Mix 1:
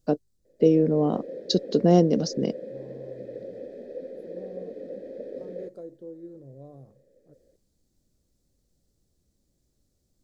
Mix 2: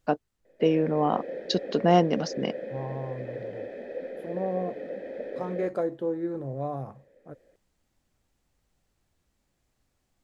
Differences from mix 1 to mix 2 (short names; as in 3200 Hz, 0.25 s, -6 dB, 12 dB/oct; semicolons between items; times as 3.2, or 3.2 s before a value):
first voice -4.5 dB; second voice +11.5 dB; master: add band shelf 1500 Hz +14 dB 2.4 oct